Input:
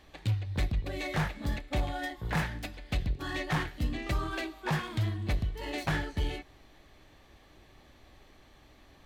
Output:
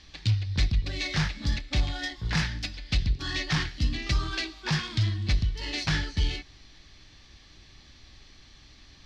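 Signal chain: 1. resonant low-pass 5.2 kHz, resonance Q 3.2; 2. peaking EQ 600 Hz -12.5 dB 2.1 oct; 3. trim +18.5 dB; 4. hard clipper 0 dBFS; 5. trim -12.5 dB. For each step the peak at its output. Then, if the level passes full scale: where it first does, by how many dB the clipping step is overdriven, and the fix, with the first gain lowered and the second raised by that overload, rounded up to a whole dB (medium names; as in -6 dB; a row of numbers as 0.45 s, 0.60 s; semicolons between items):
-19.0 dBFS, -20.0 dBFS, -1.5 dBFS, -1.5 dBFS, -14.0 dBFS; nothing clips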